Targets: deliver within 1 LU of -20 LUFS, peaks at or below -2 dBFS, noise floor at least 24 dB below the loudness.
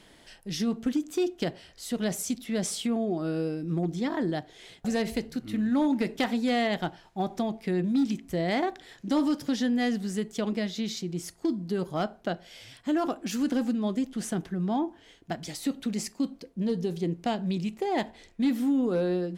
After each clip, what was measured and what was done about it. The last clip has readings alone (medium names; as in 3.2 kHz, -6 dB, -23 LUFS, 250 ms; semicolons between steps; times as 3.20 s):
clipped samples 0.5%; clipping level -19.5 dBFS; loudness -29.5 LUFS; peak level -19.5 dBFS; loudness target -20.0 LUFS
-> clip repair -19.5 dBFS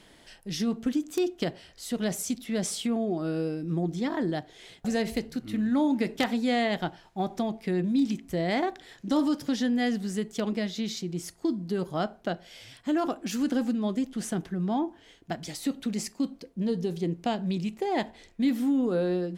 clipped samples 0.0%; loudness -29.5 LUFS; peak level -10.5 dBFS; loudness target -20.0 LUFS
-> trim +9.5 dB; peak limiter -2 dBFS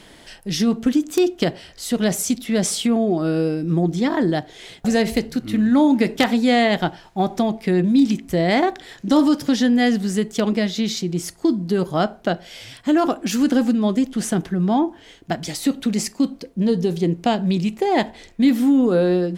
loudness -20.0 LUFS; peak level -2.0 dBFS; noise floor -47 dBFS